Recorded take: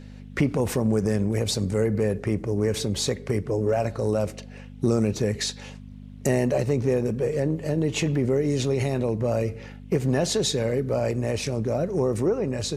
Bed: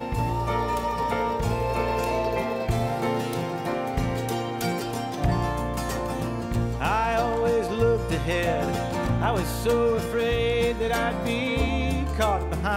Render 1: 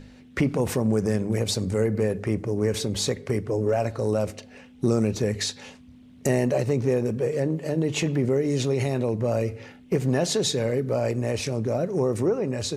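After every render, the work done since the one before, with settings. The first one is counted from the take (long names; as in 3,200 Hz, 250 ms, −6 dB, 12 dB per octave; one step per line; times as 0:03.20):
hum removal 50 Hz, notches 4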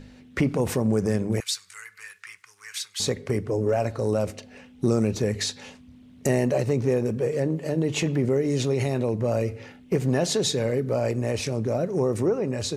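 0:01.40–0:03.00: inverse Chebyshev high-pass filter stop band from 670 Hz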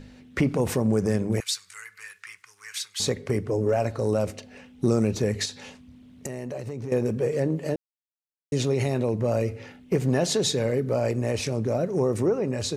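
0:05.45–0:06.92: downward compressor, threshold −30 dBFS
0:07.76–0:08.52: silence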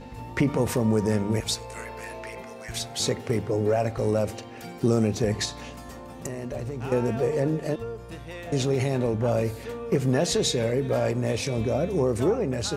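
mix in bed −13.5 dB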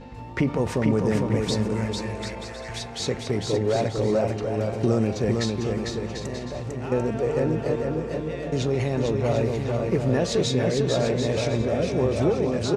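high-frequency loss of the air 69 metres
bouncing-ball delay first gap 450 ms, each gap 0.65×, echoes 5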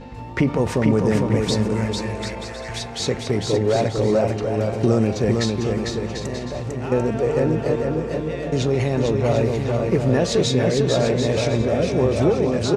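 level +4 dB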